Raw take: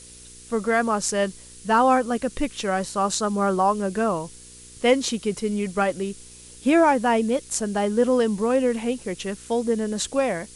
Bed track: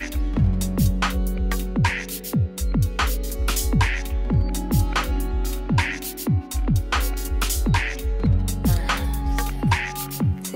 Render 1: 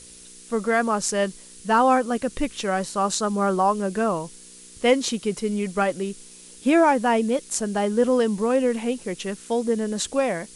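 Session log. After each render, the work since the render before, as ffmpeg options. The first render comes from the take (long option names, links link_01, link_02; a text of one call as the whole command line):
ffmpeg -i in.wav -af "bandreject=frequency=60:width_type=h:width=4,bandreject=frequency=120:width_type=h:width=4" out.wav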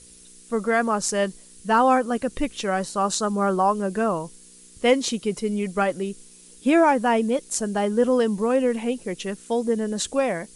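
ffmpeg -i in.wav -af "afftdn=noise_reduction=6:noise_floor=-46" out.wav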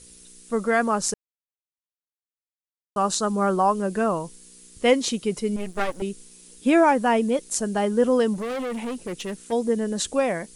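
ffmpeg -i in.wav -filter_complex "[0:a]asettb=1/sr,asplit=3[link_01][link_02][link_03];[link_01]atrim=end=5.564[link_04];[link_02]atrim=start=5.56:end=6.02,asetpts=PTS-STARTPTS,afade=type=in:duration=0.004:curve=qsin,afade=type=out:start_time=0.456:duration=0.004:curve=qsin,aeval=exprs='max(val(0),0)':channel_layout=same[link_05];[link_03]atrim=start=6.016[link_06];[link_04][link_05]acrossfade=duration=0.004:curve1=hsin:curve2=qsin[link_07];[link_07][link_06]acrossfade=duration=0.004:curve1=qsin:curve2=hsin,asplit=3[link_08][link_09][link_10];[link_08]afade=type=out:start_time=8.33:duration=0.02[link_11];[link_09]asoftclip=type=hard:threshold=-27dB,afade=type=in:start_time=8.33:duration=0.02,afade=type=out:start_time=9.51:duration=0.02[link_12];[link_10]afade=type=in:start_time=9.51:duration=0.02[link_13];[link_11][link_12][link_13]amix=inputs=3:normalize=0,asplit=3[link_14][link_15][link_16];[link_14]atrim=end=1.14,asetpts=PTS-STARTPTS,afade=type=out:start_time=1.136:duration=0.004:curve=hsin[link_17];[link_15]atrim=start=1.14:end=2.96,asetpts=PTS-STARTPTS,volume=0[link_18];[link_16]atrim=start=2.96,asetpts=PTS-STARTPTS,afade=type=in:duration=0.004:curve=hsin[link_19];[link_17][link_18][link_19]concat=n=3:v=0:a=1" out.wav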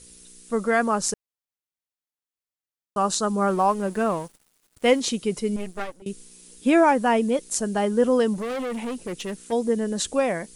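ffmpeg -i in.wav -filter_complex "[0:a]asettb=1/sr,asplit=3[link_01][link_02][link_03];[link_01]atrim=end=3.484[link_04];[link_02]atrim=start=3.48:end=5,asetpts=PTS-STARTPTS,afade=type=in:duration=0.004:curve=qsin,afade=type=out:start_time=1.516:duration=0.004:curve=qsin,aeval=exprs='sgn(val(0))*max(abs(val(0))-0.00668,0)':channel_layout=same[link_05];[link_03]atrim=start=4.996[link_06];[link_04][link_05]acrossfade=duration=0.004:curve1=hsin:curve2=qsin[link_07];[link_07][link_06]acrossfade=duration=0.004:curve1=qsin:curve2=hsin,asplit=2[link_08][link_09];[link_08]atrim=end=6.06,asetpts=PTS-STARTPTS,afade=type=out:start_time=5.56:duration=0.5:silence=0.0630957[link_10];[link_09]atrim=start=6.06,asetpts=PTS-STARTPTS,afade=type=in:duration=0.004:curve=hsin:silence=0.0630957[link_11];[link_10][link_11]concat=n=2:v=0:a=1" out.wav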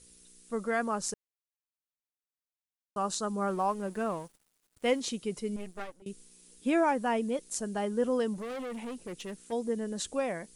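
ffmpeg -i in.wav -af "volume=-9dB" out.wav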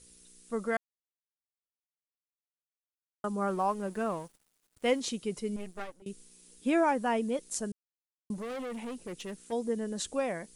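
ffmpeg -i in.wav -filter_complex "[0:a]asplit=5[link_01][link_02][link_03][link_04][link_05];[link_01]atrim=end=0.77,asetpts=PTS-STARTPTS,afade=type=out:start_time=0.766:duration=0.004:curve=hsin[link_06];[link_02]atrim=start=0.77:end=3.24,asetpts=PTS-STARTPTS,volume=0[link_07];[link_03]atrim=start=3.24:end=7.72,asetpts=PTS-STARTPTS,afade=type=in:duration=0.004:curve=hsin,afade=type=out:start_time=4.476:duration=0.004:curve=hsin[link_08];[link_04]atrim=start=7.72:end=8.3,asetpts=PTS-STARTPTS,volume=0[link_09];[link_05]atrim=start=8.3,asetpts=PTS-STARTPTS,afade=type=in:duration=0.004:curve=hsin[link_10];[link_06][link_07][link_08][link_09][link_10]concat=n=5:v=0:a=1" out.wav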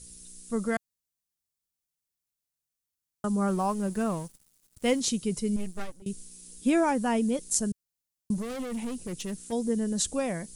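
ffmpeg -i in.wav -af "bass=frequency=250:gain=12,treble=frequency=4000:gain=10" out.wav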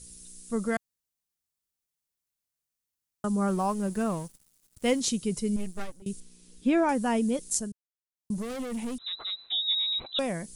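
ffmpeg -i in.wav -filter_complex "[0:a]asettb=1/sr,asplit=3[link_01][link_02][link_03];[link_01]atrim=end=6.204[link_04];[link_02]atrim=start=6.2:end=6.89,asetpts=PTS-STARTPTS,afade=type=in:duration=0.004:curve=qsin,afade=type=out:start_time=0.686:duration=0.004:curve=qsin,acrossover=split=4500[link_05][link_06];[link_06]acompressor=threshold=-60dB:ratio=4:attack=1:release=60[link_07];[link_05][link_07]amix=inputs=2:normalize=0[link_08];[link_03]atrim=start=6.886[link_09];[link_04][link_08]acrossfade=duration=0.004:curve1=hsin:curve2=qsin[link_10];[link_10][link_09]acrossfade=duration=0.004:curve1=qsin:curve2=hsin,asettb=1/sr,asplit=3[link_11][link_12][link_13];[link_11]atrim=end=8.984[link_14];[link_12]atrim=start=8.98:end=10.19,asetpts=PTS-STARTPTS,afade=type=in:duration=0.004:curve=qsin,afade=type=out:start_time=1.206:duration=0.004:curve=qsin,lowpass=frequency=3400:width_type=q:width=0.5098,lowpass=frequency=3400:width_type=q:width=0.6013,lowpass=frequency=3400:width_type=q:width=0.9,lowpass=frequency=3400:width_type=q:width=2.563,afreqshift=-4000[link_15];[link_13]atrim=start=10.186[link_16];[link_14][link_15]acrossfade=duration=0.004:curve1=hsin:curve2=qsin[link_17];[link_17][link_16]acrossfade=duration=0.004:curve1=qsin:curve2=hsin,asplit=3[link_18][link_19][link_20];[link_18]atrim=end=7.78,asetpts=PTS-STARTPTS,afade=type=out:start_time=7.49:duration=0.29:silence=0.158489[link_21];[link_19]atrim=start=7.78:end=8.13,asetpts=PTS-STARTPTS,volume=-16dB[link_22];[link_20]atrim=start=8.13,asetpts=PTS-STARTPTS,afade=type=in:duration=0.29:silence=0.158489[link_23];[link_21][link_22][link_23]concat=n=3:v=0:a=1" out.wav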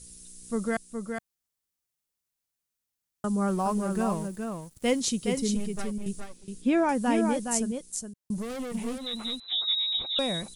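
ffmpeg -i in.wav -af "aecho=1:1:417:0.531" out.wav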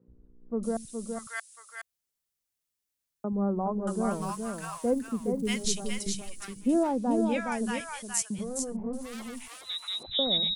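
ffmpeg -i in.wav -filter_complex "[0:a]acrossover=split=160|990[link_01][link_02][link_03];[link_01]adelay=80[link_04];[link_03]adelay=630[link_05];[link_04][link_02][link_05]amix=inputs=3:normalize=0" out.wav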